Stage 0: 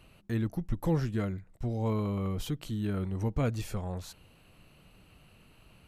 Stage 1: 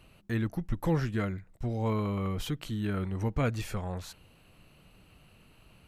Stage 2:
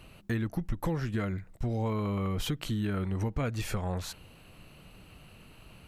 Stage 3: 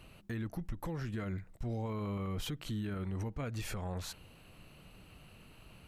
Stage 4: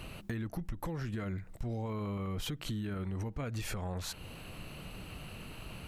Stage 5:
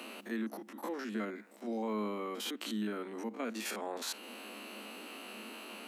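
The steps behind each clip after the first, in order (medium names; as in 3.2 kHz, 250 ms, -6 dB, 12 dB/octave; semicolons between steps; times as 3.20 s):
dynamic bell 1.8 kHz, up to +6 dB, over -54 dBFS, Q 0.75
compression 6:1, threshold -33 dBFS, peak gain reduction 10.5 dB; trim +5.5 dB
peak limiter -27 dBFS, peak gain reduction 9 dB; trim -3.5 dB
compression 3:1, threshold -48 dBFS, peak gain reduction 10.5 dB; trim +10.5 dB
spectrogram pixelated in time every 50 ms; Chebyshev high-pass 210 Hz, order 8; trim +5 dB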